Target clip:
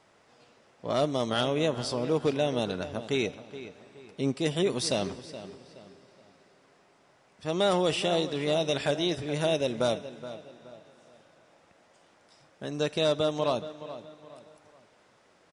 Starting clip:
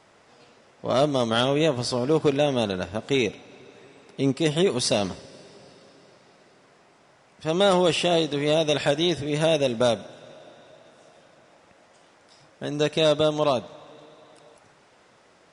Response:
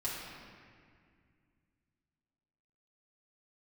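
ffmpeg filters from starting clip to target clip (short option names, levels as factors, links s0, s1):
-filter_complex "[0:a]asplit=2[s0][s1];[s1]adelay=422,lowpass=f=3700:p=1,volume=0.211,asplit=2[s2][s3];[s3]adelay=422,lowpass=f=3700:p=1,volume=0.36,asplit=2[s4][s5];[s5]adelay=422,lowpass=f=3700:p=1,volume=0.36[s6];[s0][s2][s4][s6]amix=inputs=4:normalize=0,volume=0.531"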